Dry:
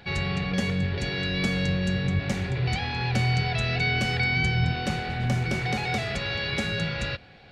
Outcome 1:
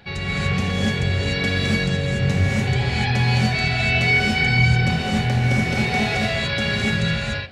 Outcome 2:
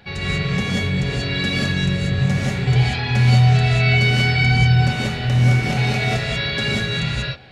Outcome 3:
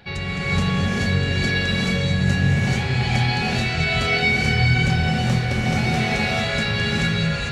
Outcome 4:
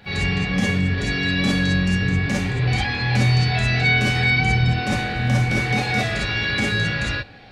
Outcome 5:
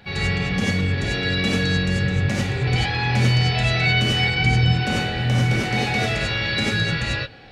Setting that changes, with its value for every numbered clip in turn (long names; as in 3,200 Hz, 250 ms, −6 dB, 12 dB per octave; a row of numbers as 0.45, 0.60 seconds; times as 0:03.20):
reverb whose tail is shaped and stops, gate: 320, 210, 480, 80, 120 milliseconds